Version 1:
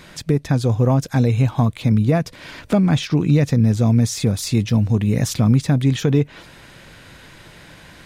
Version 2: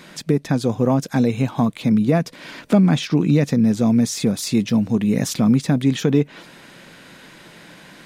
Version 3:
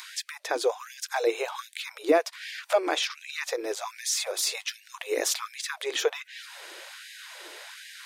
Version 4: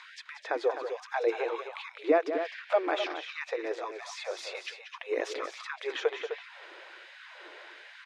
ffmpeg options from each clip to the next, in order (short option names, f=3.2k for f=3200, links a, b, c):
-af "lowshelf=f=130:t=q:w=1.5:g=-12.5"
-filter_complex "[0:a]acrossover=split=270|3400[a][b][c];[c]acompressor=mode=upward:threshold=-42dB:ratio=2.5[d];[a][b][d]amix=inputs=3:normalize=0,afftfilt=real='re*gte(b*sr/1024,300*pow(1600/300,0.5+0.5*sin(2*PI*1.3*pts/sr)))':imag='im*gte(b*sr/1024,300*pow(1600/300,0.5+0.5*sin(2*PI*1.3*pts/sr)))':win_size=1024:overlap=0.75"
-af "highpass=170,lowpass=2.5k,aecho=1:1:183.7|256.6:0.316|0.355,volume=-2.5dB"